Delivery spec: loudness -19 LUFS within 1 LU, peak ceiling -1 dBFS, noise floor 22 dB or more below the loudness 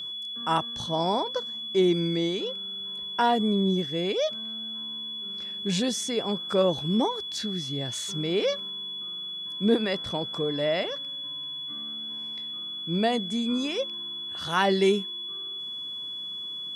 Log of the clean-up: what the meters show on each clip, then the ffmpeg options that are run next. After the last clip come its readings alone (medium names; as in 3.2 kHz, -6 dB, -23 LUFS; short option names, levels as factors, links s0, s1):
steady tone 3.4 kHz; tone level -33 dBFS; loudness -28.0 LUFS; peak level -9.5 dBFS; loudness target -19.0 LUFS
-> -af "bandreject=f=3400:w=30"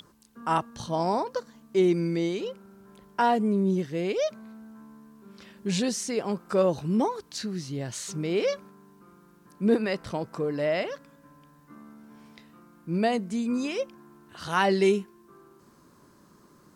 steady tone not found; loudness -28.0 LUFS; peak level -10.5 dBFS; loudness target -19.0 LUFS
-> -af "volume=2.82"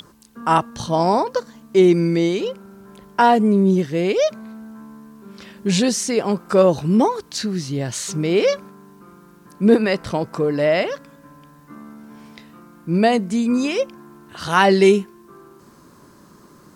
loudness -19.0 LUFS; peak level -1.5 dBFS; noise floor -49 dBFS